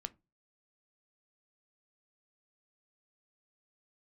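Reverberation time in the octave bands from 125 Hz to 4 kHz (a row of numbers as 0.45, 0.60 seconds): 0.45, 0.35, 0.30, 0.25, 0.20, 0.15 seconds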